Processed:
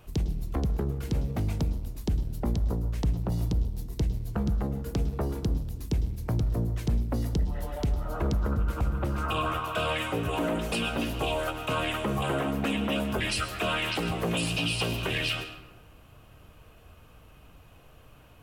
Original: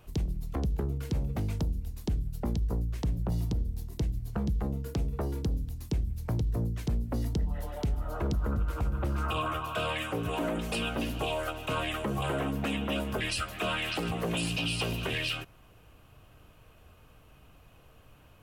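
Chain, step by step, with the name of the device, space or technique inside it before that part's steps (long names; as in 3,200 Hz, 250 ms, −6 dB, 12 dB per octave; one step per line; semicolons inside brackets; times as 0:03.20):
saturated reverb return (on a send at −8.5 dB: convolution reverb RT60 0.90 s, pre-delay 102 ms + soft clipping −27.5 dBFS, distortion −11 dB)
on the sum: level +2.5 dB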